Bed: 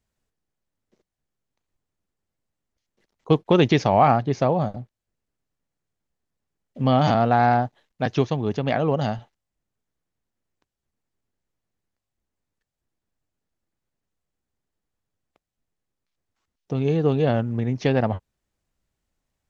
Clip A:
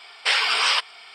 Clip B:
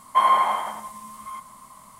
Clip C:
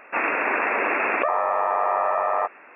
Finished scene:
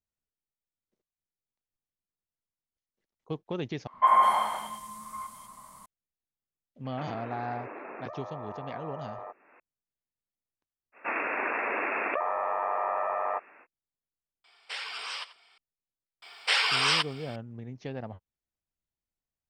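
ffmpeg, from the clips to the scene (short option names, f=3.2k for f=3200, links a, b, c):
-filter_complex "[3:a]asplit=2[a][b];[1:a]asplit=2[c][d];[0:a]volume=-17dB[e];[2:a]acrossover=split=310|2700[f][g][h];[f]adelay=70[i];[h]adelay=200[j];[i][g][j]amix=inputs=3:normalize=0[k];[a]acrossover=split=440|1300[l][m][n];[l]acompressor=threshold=-36dB:ratio=4[o];[m]acompressor=threshold=-35dB:ratio=4[p];[n]acompressor=threshold=-48dB:ratio=4[q];[o][p][q]amix=inputs=3:normalize=0[r];[c]asplit=2[s][t];[t]adelay=87.46,volume=-15dB,highshelf=f=4k:g=-1.97[u];[s][u]amix=inputs=2:normalize=0[v];[d]acrusher=bits=10:mix=0:aa=0.000001[w];[e]asplit=2[x][y];[x]atrim=end=3.874[z];[k]atrim=end=1.99,asetpts=PTS-STARTPTS,volume=-2.5dB[aa];[y]atrim=start=5.856[ab];[r]atrim=end=2.75,asetpts=PTS-STARTPTS,volume=-9.5dB,afade=t=in:d=0.004:c=hsin,afade=t=out:st=2.746:d=0.004:c=hsin,adelay=6850[ac];[b]atrim=end=2.75,asetpts=PTS-STARTPTS,volume=-7.5dB,afade=t=in:d=0.05,afade=t=out:st=2.7:d=0.05,adelay=10920[ad];[v]atrim=end=1.14,asetpts=PTS-STARTPTS,volume=-17dB,afade=t=in:d=0.004:c=hsin,afade=t=out:st=1.136:d=0.004:c=hsin,adelay=636804S[ae];[w]atrim=end=1.14,asetpts=PTS-STARTPTS,volume=-4.5dB,afade=t=in:d=0.004:c=hsin,afade=t=out:st=1.136:d=0.004:c=hsin,adelay=16220[af];[z][aa]acrossfade=d=0.004:c1=hsin:c2=hsin[ag];[ag][ab]acrossfade=d=0.004:c1=hsin:c2=hsin[ah];[ah][ac][ad][ae][af]amix=inputs=5:normalize=0"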